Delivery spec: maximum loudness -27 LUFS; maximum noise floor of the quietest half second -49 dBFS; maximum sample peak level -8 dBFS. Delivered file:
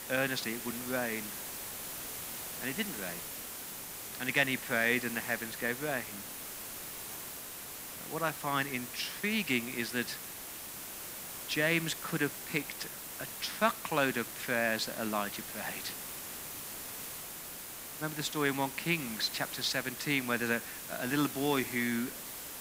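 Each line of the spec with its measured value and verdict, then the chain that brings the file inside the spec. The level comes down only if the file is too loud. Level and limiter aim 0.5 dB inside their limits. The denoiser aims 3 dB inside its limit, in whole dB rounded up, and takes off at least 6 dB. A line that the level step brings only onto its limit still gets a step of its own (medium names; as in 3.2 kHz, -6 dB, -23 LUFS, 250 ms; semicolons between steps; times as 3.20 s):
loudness -34.0 LUFS: pass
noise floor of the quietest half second -45 dBFS: fail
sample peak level -11.5 dBFS: pass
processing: noise reduction 7 dB, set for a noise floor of -45 dBFS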